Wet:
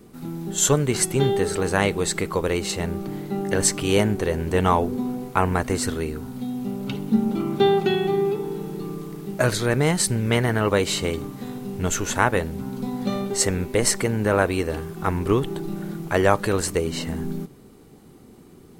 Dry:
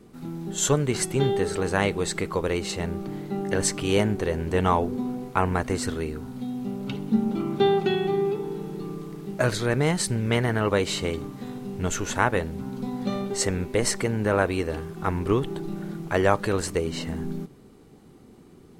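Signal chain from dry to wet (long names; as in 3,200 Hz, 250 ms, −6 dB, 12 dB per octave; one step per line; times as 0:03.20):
high-shelf EQ 11,000 Hz +11 dB
level +2.5 dB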